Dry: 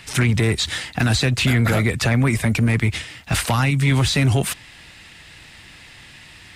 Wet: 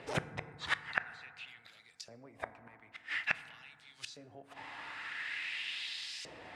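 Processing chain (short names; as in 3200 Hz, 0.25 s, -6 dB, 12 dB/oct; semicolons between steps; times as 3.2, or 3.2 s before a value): LFO band-pass saw up 0.48 Hz 480–5800 Hz; flipped gate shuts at -26 dBFS, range -33 dB; FDN reverb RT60 2.2 s, low-frequency decay 1.3×, high-frequency decay 0.25×, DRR 12 dB; gain +8.5 dB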